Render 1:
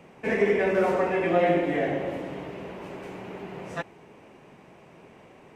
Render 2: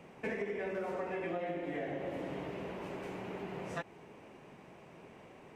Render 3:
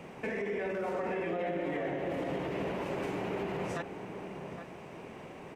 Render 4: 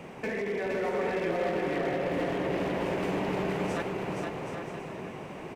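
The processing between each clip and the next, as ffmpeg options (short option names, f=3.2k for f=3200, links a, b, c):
-af "acompressor=threshold=-31dB:ratio=10,volume=-3.5dB"
-filter_complex "[0:a]alimiter=level_in=10.5dB:limit=-24dB:level=0:latency=1:release=33,volume=-10.5dB,asplit=2[a][b];[b]adelay=816.3,volume=-8dB,highshelf=f=4k:g=-18.4[c];[a][c]amix=inputs=2:normalize=0,volume=7.5dB"
-af "aeval=exprs='0.0376*(abs(mod(val(0)/0.0376+3,4)-2)-1)':c=same,aecho=1:1:470|775.5|974.1|1103|1187:0.631|0.398|0.251|0.158|0.1,volume=3dB"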